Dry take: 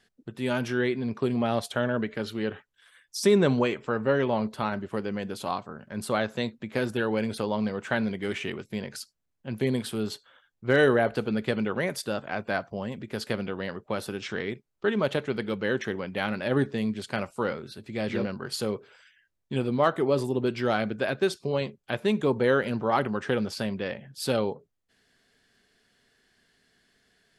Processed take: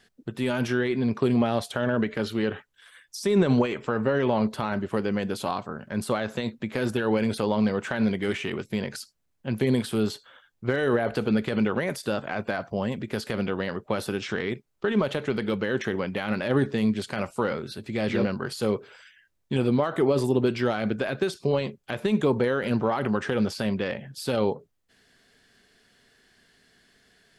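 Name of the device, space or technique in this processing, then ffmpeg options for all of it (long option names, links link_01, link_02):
de-esser from a sidechain: -filter_complex "[0:a]asplit=2[link_01][link_02];[link_02]highpass=frequency=4500:poles=1,apad=whole_len=1207718[link_03];[link_01][link_03]sidechaincompress=threshold=-41dB:ratio=12:attack=4:release=52,volume=5.5dB"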